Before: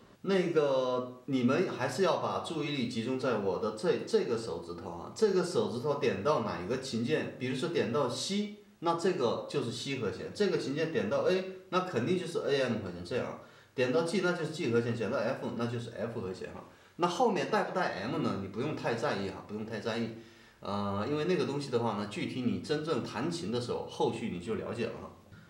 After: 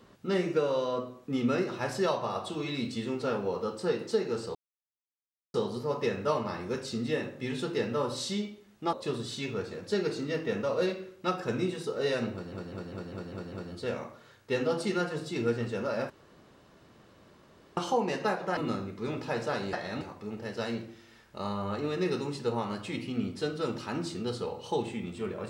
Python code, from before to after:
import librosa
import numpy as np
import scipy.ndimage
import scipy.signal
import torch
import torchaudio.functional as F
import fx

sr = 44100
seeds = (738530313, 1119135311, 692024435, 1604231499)

y = fx.edit(x, sr, fx.silence(start_s=4.55, length_s=0.99),
    fx.cut(start_s=8.93, length_s=0.48),
    fx.stutter(start_s=12.8, slice_s=0.2, count=7),
    fx.room_tone_fill(start_s=15.38, length_s=1.67),
    fx.move(start_s=17.85, length_s=0.28, to_s=19.29), tone=tone)